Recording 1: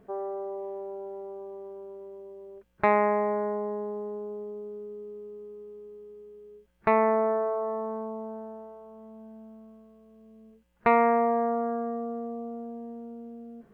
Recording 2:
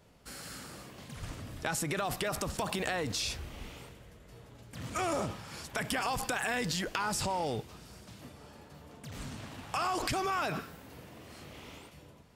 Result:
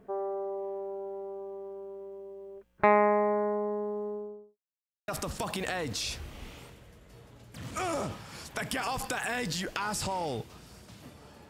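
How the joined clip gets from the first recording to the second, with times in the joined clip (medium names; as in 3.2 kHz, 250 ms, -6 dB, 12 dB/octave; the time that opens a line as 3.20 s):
recording 1
4.05–4.58 s: studio fade out
4.58–5.08 s: mute
5.08 s: go over to recording 2 from 2.27 s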